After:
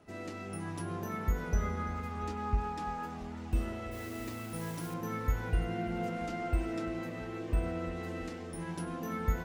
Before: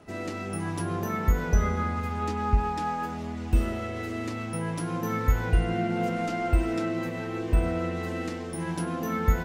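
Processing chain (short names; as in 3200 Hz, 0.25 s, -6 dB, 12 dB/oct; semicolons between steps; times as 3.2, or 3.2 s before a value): 3.91–4.94 modulation noise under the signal 13 dB; warbling echo 0.336 s, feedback 61%, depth 121 cents, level -18 dB; gain -8 dB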